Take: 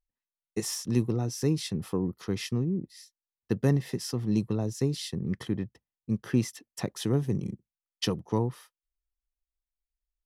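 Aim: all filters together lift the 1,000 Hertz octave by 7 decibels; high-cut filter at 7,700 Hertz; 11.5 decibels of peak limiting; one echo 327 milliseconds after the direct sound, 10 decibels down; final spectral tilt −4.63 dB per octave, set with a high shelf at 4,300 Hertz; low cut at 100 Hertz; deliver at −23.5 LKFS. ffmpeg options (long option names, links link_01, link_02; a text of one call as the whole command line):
ffmpeg -i in.wav -af "highpass=100,lowpass=7700,equalizer=frequency=1000:width_type=o:gain=8,highshelf=frequency=4300:gain=6.5,alimiter=limit=-23.5dB:level=0:latency=1,aecho=1:1:327:0.316,volume=11dB" out.wav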